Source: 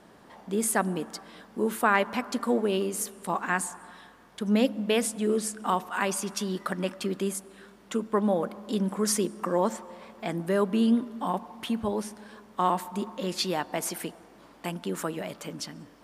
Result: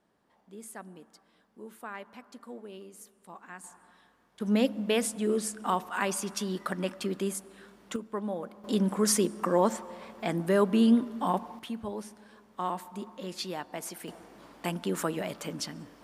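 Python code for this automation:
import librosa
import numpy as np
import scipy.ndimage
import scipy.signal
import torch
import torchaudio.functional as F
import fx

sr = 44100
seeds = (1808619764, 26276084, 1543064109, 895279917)

y = fx.gain(x, sr, db=fx.steps((0.0, -18.5), (3.64, -12.0), (4.4, -2.0), (7.96, -9.0), (8.64, 1.0), (11.59, -7.5), (14.08, 1.0)))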